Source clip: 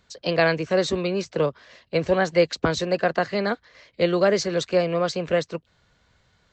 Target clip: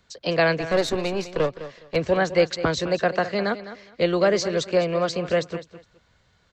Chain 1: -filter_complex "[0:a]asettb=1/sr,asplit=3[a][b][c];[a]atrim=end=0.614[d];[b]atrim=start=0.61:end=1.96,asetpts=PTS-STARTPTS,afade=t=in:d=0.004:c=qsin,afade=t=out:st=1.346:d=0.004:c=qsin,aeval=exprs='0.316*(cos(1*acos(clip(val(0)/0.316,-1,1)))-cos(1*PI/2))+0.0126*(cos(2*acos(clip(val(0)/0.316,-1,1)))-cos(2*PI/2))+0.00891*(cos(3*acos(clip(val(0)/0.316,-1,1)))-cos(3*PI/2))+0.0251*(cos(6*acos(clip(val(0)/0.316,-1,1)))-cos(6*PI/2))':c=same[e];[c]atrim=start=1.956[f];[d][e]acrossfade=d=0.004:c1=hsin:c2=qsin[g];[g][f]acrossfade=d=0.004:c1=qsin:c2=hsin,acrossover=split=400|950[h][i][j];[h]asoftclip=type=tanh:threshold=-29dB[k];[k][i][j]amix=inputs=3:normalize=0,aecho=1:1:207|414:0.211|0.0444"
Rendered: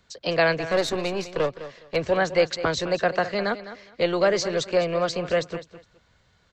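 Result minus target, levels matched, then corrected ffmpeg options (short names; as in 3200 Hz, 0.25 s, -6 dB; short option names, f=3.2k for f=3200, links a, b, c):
soft clip: distortion +13 dB
-filter_complex "[0:a]asettb=1/sr,asplit=3[a][b][c];[a]atrim=end=0.614[d];[b]atrim=start=0.61:end=1.96,asetpts=PTS-STARTPTS,afade=t=in:d=0.004:c=qsin,afade=t=out:st=1.346:d=0.004:c=qsin,aeval=exprs='0.316*(cos(1*acos(clip(val(0)/0.316,-1,1)))-cos(1*PI/2))+0.0126*(cos(2*acos(clip(val(0)/0.316,-1,1)))-cos(2*PI/2))+0.00891*(cos(3*acos(clip(val(0)/0.316,-1,1)))-cos(3*PI/2))+0.0251*(cos(6*acos(clip(val(0)/0.316,-1,1)))-cos(6*PI/2))':c=same[e];[c]atrim=start=1.956[f];[d][e]acrossfade=d=0.004:c1=hsin:c2=qsin[g];[g][f]acrossfade=d=0.004:c1=qsin:c2=hsin,acrossover=split=400|950[h][i][j];[h]asoftclip=type=tanh:threshold=-17dB[k];[k][i][j]amix=inputs=3:normalize=0,aecho=1:1:207|414:0.211|0.0444"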